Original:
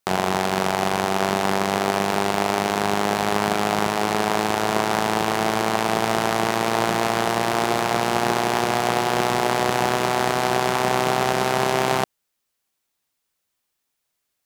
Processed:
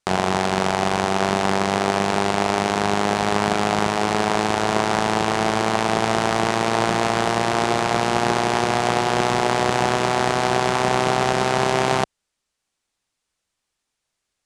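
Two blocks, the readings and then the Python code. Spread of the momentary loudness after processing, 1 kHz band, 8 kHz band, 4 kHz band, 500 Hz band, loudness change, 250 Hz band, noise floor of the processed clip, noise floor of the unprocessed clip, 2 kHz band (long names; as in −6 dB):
1 LU, +1.0 dB, 0.0 dB, +1.0 dB, +1.0 dB, +1.0 dB, +1.5 dB, −80 dBFS, −77 dBFS, +1.0 dB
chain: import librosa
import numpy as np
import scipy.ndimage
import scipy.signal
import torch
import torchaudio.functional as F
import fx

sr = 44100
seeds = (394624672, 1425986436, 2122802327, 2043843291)

y = scipy.signal.sosfilt(scipy.signal.butter(4, 9400.0, 'lowpass', fs=sr, output='sos'), x)
y = fx.low_shelf(y, sr, hz=74.0, db=8.0)
y = y * librosa.db_to_amplitude(1.0)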